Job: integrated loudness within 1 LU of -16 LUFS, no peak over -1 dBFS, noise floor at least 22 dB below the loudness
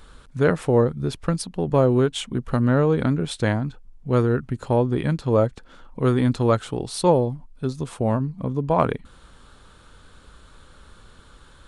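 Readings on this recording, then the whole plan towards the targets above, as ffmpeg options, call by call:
loudness -22.5 LUFS; peak level -5.0 dBFS; loudness target -16.0 LUFS
-> -af "volume=2.11,alimiter=limit=0.891:level=0:latency=1"

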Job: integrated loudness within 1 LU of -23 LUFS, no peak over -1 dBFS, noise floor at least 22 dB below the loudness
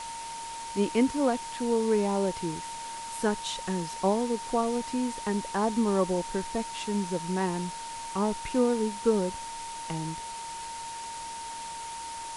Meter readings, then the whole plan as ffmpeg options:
steady tone 920 Hz; tone level -37 dBFS; noise floor -39 dBFS; noise floor target -52 dBFS; loudness -30.0 LUFS; peak level -12.0 dBFS; loudness target -23.0 LUFS
-> -af "bandreject=f=920:w=30"
-af "afftdn=nr=13:nf=-39"
-af "volume=2.24"

